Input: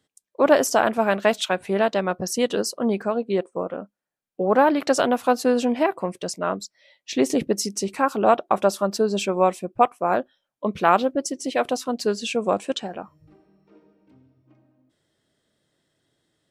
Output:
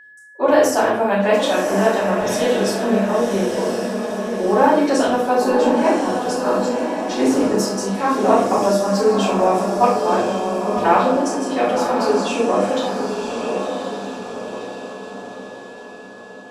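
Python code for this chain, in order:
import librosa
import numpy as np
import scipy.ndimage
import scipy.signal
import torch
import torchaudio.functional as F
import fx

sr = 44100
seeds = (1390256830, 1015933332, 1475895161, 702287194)

y = fx.echo_diffused(x, sr, ms=1052, feedback_pct=50, wet_db=-5.0)
y = fx.room_shoebox(y, sr, seeds[0], volume_m3=110.0, walls='mixed', distance_m=4.1)
y = y + 10.0 ** (-31.0 / 20.0) * np.sin(2.0 * np.pi * 1700.0 * np.arange(len(y)) / sr)
y = y * 10.0 ** (-11.5 / 20.0)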